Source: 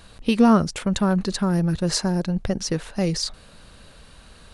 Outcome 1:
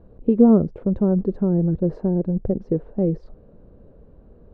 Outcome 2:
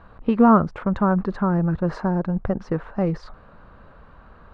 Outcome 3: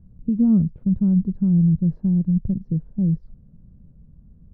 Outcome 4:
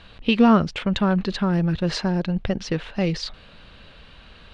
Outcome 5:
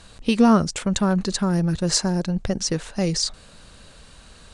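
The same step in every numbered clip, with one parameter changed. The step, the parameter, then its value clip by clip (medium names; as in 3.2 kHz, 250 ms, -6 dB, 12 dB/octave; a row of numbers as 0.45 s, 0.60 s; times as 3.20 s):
resonant low-pass, frequency: 440 Hz, 1.2 kHz, 170 Hz, 3.1 kHz, 7.9 kHz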